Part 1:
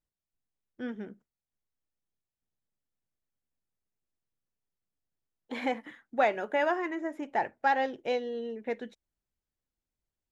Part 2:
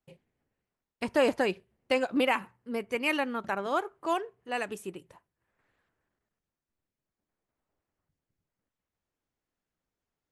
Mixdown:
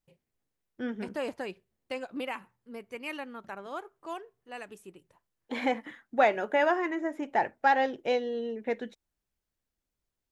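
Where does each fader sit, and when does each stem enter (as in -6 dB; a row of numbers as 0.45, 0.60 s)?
+2.5, -9.5 dB; 0.00, 0.00 s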